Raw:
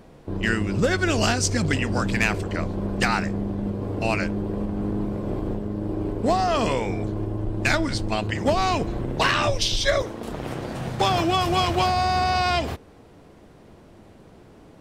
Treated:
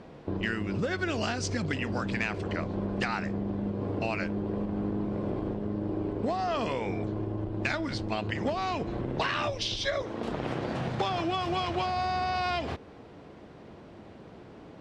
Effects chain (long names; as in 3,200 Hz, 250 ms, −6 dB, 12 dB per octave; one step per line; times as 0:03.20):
low-pass filter 4,600 Hz 12 dB per octave
downward compressor, threshold −28 dBFS, peak gain reduction 12 dB
high-pass filter 99 Hz 6 dB per octave
level +1.5 dB